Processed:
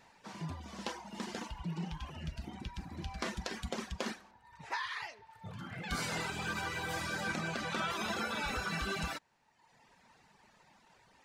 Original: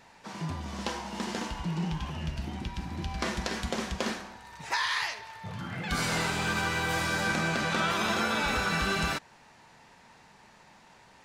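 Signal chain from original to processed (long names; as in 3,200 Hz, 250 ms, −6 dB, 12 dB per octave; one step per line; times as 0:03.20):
reverb reduction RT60 1.1 s
0:04.31–0:05.31: high-shelf EQ 3,600 Hz −11 dB
level −5.5 dB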